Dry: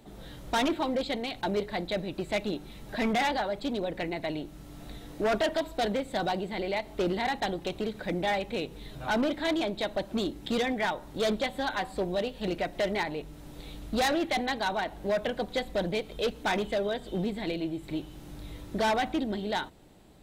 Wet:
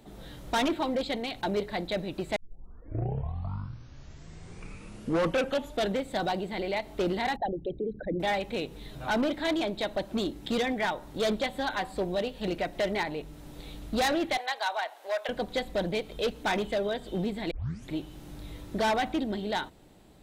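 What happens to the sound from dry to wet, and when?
0:02.36: tape start 3.67 s
0:07.36–0:08.20: spectral envelope exaggerated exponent 3
0:14.37–0:15.29: high-pass filter 600 Hz 24 dB per octave
0:17.51: tape start 0.40 s

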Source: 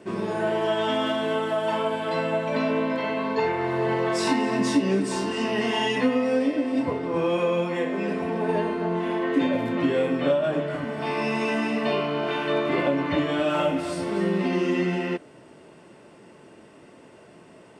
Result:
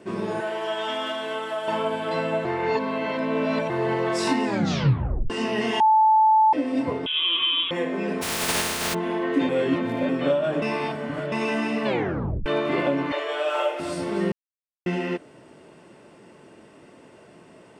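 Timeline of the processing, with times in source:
0:00.40–0:01.68: high-pass filter 770 Hz 6 dB per octave
0:02.45–0:03.70: reverse
0:04.45: tape stop 0.85 s
0:05.80–0:06.53: beep over 873 Hz −13.5 dBFS
0:07.06–0:07.71: voice inversion scrambler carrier 3,600 Hz
0:08.21–0:08.93: compressing power law on the bin magnitudes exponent 0.21
0:09.49–0:10.09: reverse
0:10.62–0:11.32: reverse
0:11.85: tape stop 0.61 s
0:13.12–0:13.80: Butterworth high-pass 370 Hz 72 dB per octave
0:14.32–0:14.86: silence

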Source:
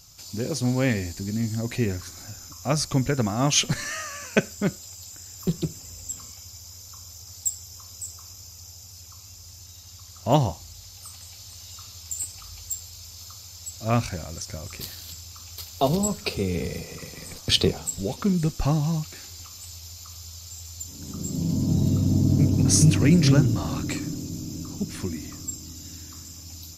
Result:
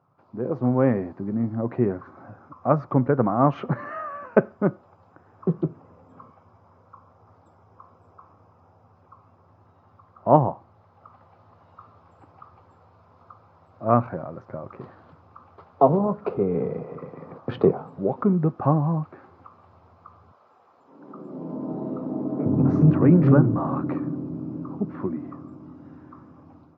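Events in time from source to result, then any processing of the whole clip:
0:20.31–0:22.46: high-pass filter 380 Hz
whole clip: elliptic band-pass filter 120–1,200 Hz, stop band 80 dB; low-shelf EQ 220 Hz −10.5 dB; automatic gain control gain up to 6.5 dB; level +2 dB

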